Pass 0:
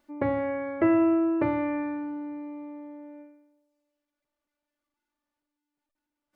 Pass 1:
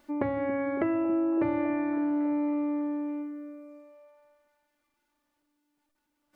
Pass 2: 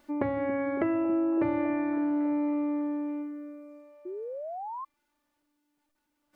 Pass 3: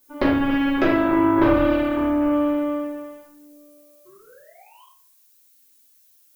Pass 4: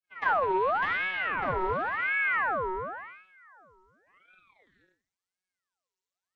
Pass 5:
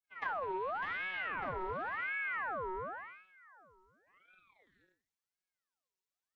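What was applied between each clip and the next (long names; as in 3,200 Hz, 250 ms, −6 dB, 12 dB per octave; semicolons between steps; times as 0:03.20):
downward compressor 6 to 1, threshold −35 dBFS, peak gain reduction 15.5 dB; echo through a band-pass that steps 278 ms, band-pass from 230 Hz, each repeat 0.7 octaves, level −6.5 dB; level +8 dB
sound drawn into the spectrogram rise, 0:04.05–0:04.85, 350–1,100 Hz −37 dBFS
harmonic generator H 7 −16 dB, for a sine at −13.5 dBFS; background noise violet −67 dBFS; convolution reverb RT60 0.60 s, pre-delay 4 ms, DRR −7 dB; level +4 dB
downward expander −53 dBFS; channel vocoder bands 16, square 92.2 Hz; ring modulator whose carrier an LFO sweeps 1,300 Hz, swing 50%, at 0.92 Hz; level −5 dB
downward compressor 4 to 1, threshold −30 dBFS, peak gain reduction 8 dB; level −5 dB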